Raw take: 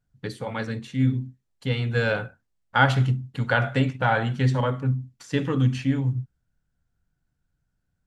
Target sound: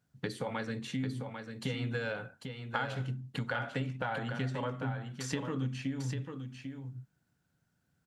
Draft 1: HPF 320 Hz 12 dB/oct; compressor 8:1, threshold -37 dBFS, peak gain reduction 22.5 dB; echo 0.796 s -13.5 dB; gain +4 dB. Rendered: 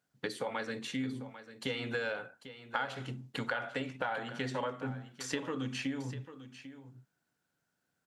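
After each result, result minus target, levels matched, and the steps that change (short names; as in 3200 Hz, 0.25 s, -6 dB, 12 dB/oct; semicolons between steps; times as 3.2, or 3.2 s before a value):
125 Hz band -7.0 dB; echo-to-direct -6.5 dB
change: HPF 130 Hz 12 dB/oct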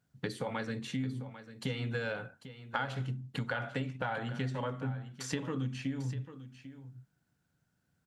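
echo-to-direct -6.5 dB
change: echo 0.796 s -7 dB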